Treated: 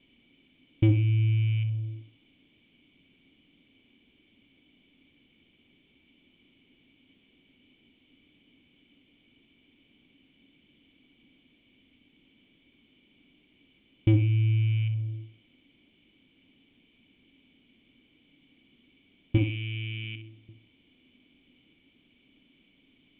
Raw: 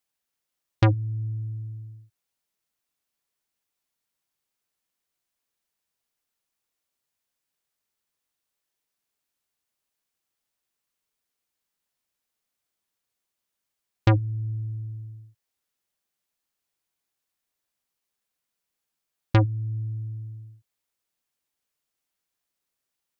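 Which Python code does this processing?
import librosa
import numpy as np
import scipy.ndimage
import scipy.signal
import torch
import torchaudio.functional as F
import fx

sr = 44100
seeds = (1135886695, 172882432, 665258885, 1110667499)

p1 = fx.rattle_buzz(x, sr, strikes_db=-31.0, level_db=-31.0)
p2 = fx.tilt_eq(p1, sr, slope=3.5, at=(19.37, 20.49))
p3 = fx.leveller(p2, sr, passes=3)
p4 = fx.quant_dither(p3, sr, seeds[0], bits=6, dither='triangular')
p5 = p3 + (p4 * 10.0 ** (-8.0 / 20.0))
p6 = fx.formant_cascade(p5, sr, vowel='i')
p7 = fx.echo_feedback(p6, sr, ms=63, feedback_pct=32, wet_db=-10.5)
y = p7 * 10.0 ** (1.5 / 20.0)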